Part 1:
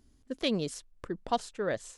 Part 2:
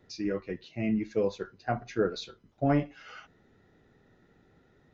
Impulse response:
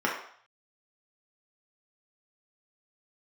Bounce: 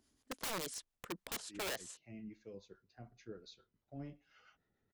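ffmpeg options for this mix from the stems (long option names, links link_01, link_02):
-filter_complex "[0:a]highpass=frequency=330:poles=1,volume=0dB,asplit=2[link_01][link_02];[1:a]acrossover=split=470|3000[link_03][link_04][link_05];[link_04]acompressor=threshold=-46dB:ratio=3[link_06];[link_03][link_06][link_05]amix=inputs=3:normalize=0,adelay=1300,volume=-15dB[link_07];[link_02]apad=whole_len=274793[link_08];[link_07][link_08]sidechaincompress=threshold=-34dB:ratio=8:attack=37:release=282[link_09];[link_01][link_09]amix=inputs=2:normalize=0,equalizer=frequency=280:width=0.52:gain=-3.5,acrossover=split=550[link_10][link_11];[link_10]aeval=exprs='val(0)*(1-0.5/2+0.5/2*cos(2*PI*7*n/s))':channel_layout=same[link_12];[link_11]aeval=exprs='val(0)*(1-0.5/2-0.5/2*cos(2*PI*7*n/s))':channel_layout=same[link_13];[link_12][link_13]amix=inputs=2:normalize=0,aeval=exprs='(mod(50.1*val(0)+1,2)-1)/50.1':channel_layout=same"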